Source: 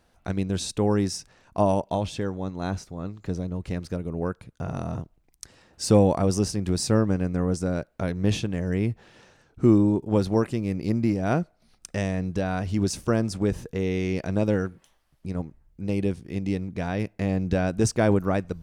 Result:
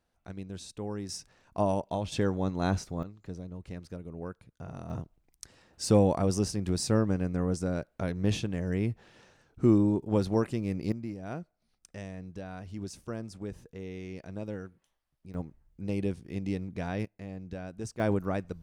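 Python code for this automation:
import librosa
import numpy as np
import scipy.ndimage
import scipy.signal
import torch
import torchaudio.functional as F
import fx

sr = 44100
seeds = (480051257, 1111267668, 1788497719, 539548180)

y = fx.gain(x, sr, db=fx.steps((0.0, -14.0), (1.09, -6.0), (2.12, 1.0), (3.03, -11.0), (4.9, -4.5), (10.92, -14.5), (15.34, -5.5), (17.05, -16.0), (18.0, -7.0)))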